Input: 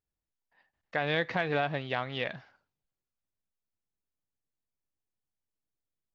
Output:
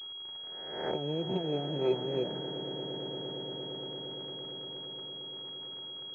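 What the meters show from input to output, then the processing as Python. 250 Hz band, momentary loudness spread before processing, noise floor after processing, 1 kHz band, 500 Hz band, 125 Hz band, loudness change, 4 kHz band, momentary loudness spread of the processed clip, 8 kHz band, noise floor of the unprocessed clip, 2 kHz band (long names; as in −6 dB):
+4.5 dB, 7 LU, −43 dBFS, −6.5 dB, +2.5 dB, +0.5 dB, −4.5 dB, +8.5 dB, 9 LU, can't be measured, below −85 dBFS, −17.0 dB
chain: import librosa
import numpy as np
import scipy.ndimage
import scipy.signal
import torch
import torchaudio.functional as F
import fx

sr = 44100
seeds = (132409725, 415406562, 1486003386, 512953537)

p1 = fx.spec_swells(x, sr, rise_s=0.9)
p2 = scipy.signal.sosfilt(scipy.signal.butter(2, 120.0, 'highpass', fs=sr, output='sos'), p1)
p3 = fx.env_lowpass_down(p2, sr, base_hz=380.0, full_db=-25.5)
p4 = fx.dynamic_eq(p3, sr, hz=1200.0, q=0.72, threshold_db=-50.0, ratio=4.0, max_db=-4)
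p5 = fx.dmg_crackle(p4, sr, seeds[0], per_s=220.0, level_db=-42.0)
p6 = fx.small_body(p5, sr, hz=(380.0, 900.0, 1300.0), ring_ms=100, db=16)
p7 = p6 + fx.echo_swell(p6, sr, ms=115, loudest=8, wet_db=-15.5, dry=0)
y = fx.pwm(p7, sr, carrier_hz=3300.0)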